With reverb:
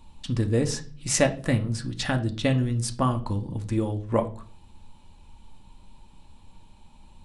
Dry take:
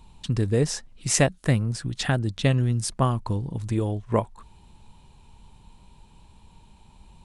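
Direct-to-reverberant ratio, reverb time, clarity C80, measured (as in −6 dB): 4.5 dB, 0.40 s, 20.5 dB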